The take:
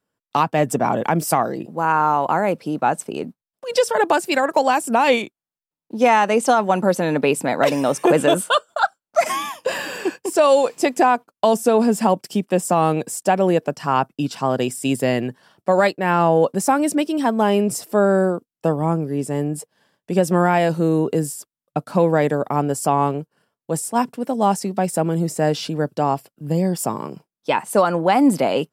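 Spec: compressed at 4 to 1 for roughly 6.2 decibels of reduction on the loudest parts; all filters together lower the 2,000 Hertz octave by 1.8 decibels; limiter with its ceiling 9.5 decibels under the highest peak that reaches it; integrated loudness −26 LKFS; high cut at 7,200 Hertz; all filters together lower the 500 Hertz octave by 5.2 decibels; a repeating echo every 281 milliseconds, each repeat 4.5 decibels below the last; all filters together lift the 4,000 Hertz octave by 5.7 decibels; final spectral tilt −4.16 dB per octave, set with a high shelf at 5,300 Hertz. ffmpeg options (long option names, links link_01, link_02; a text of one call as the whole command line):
ffmpeg -i in.wav -af "lowpass=7200,equalizer=frequency=500:width_type=o:gain=-6.5,equalizer=frequency=2000:width_type=o:gain=-5,equalizer=frequency=4000:width_type=o:gain=7,highshelf=frequency=5300:gain=7,acompressor=threshold=-21dB:ratio=4,alimiter=limit=-18dB:level=0:latency=1,aecho=1:1:281|562|843|1124|1405|1686|1967|2248|2529:0.596|0.357|0.214|0.129|0.0772|0.0463|0.0278|0.0167|0.01,volume=0.5dB" out.wav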